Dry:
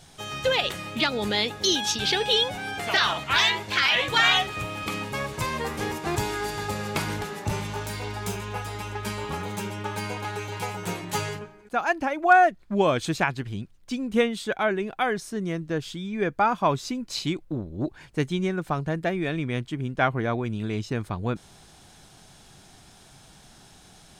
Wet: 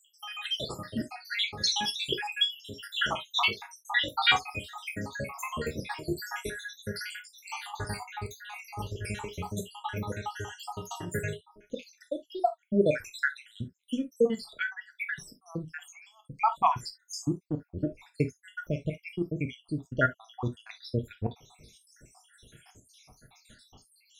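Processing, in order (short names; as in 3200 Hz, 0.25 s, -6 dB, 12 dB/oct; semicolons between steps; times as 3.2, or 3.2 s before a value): random spectral dropouts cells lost 82%; non-linear reverb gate 90 ms falling, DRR 4.5 dB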